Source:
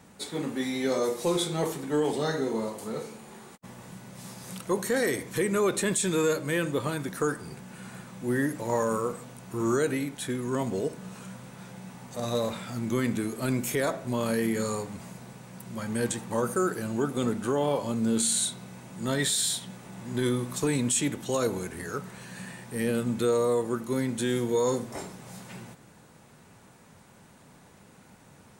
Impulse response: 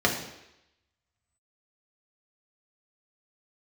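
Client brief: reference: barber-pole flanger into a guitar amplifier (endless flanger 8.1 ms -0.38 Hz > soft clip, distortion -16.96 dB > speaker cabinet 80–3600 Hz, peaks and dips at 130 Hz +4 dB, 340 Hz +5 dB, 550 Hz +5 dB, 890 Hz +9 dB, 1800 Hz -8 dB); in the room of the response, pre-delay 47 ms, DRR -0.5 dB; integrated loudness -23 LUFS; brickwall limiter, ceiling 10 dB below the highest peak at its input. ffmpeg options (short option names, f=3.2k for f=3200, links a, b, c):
-filter_complex "[0:a]alimiter=level_in=0.5dB:limit=-24dB:level=0:latency=1,volume=-0.5dB,asplit=2[a][b];[1:a]atrim=start_sample=2205,adelay=47[c];[b][c]afir=irnorm=-1:irlink=0,volume=-14dB[d];[a][d]amix=inputs=2:normalize=0,asplit=2[e][f];[f]adelay=8.1,afreqshift=-0.38[g];[e][g]amix=inputs=2:normalize=1,asoftclip=threshold=-25.5dB,highpass=80,equalizer=f=130:t=q:w=4:g=4,equalizer=f=340:t=q:w=4:g=5,equalizer=f=550:t=q:w=4:g=5,equalizer=f=890:t=q:w=4:g=9,equalizer=f=1.8k:t=q:w=4:g=-8,lowpass=f=3.6k:w=0.5412,lowpass=f=3.6k:w=1.3066,volume=10dB"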